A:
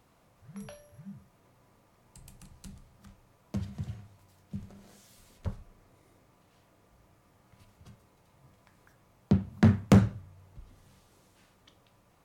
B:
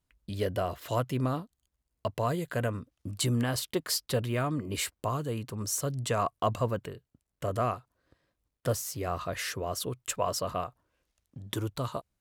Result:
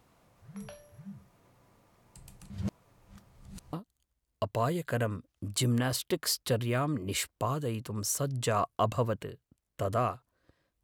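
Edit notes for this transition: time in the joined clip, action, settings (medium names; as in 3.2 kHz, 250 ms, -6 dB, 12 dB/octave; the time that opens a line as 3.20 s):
A
2.50–3.73 s: reverse
3.73 s: go over to B from 1.36 s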